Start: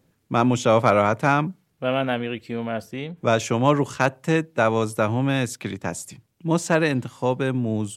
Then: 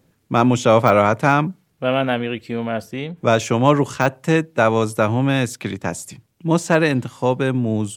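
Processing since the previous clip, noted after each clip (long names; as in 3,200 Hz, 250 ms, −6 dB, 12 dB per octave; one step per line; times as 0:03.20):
de-essing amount 60%
level +4 dB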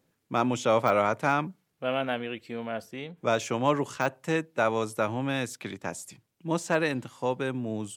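low-shelf EQ 180 Hz −9.5 dB
level −8.5 dB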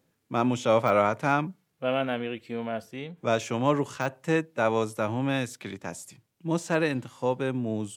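harmonic and percussive parts rebalanced percussive −6 dB
level +3 dB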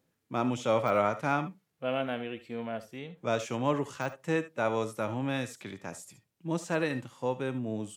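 convolution reverb, pre-delay 60 ms, DRR 12.5 dB
level −4.5 dB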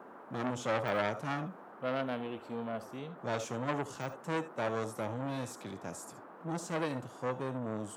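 noise in a band 200–1,500 Hz −50 dBFS
parametric band 2,100 Hz −8 dB 1.2 octaves
saturating transformer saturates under 1,600 Hz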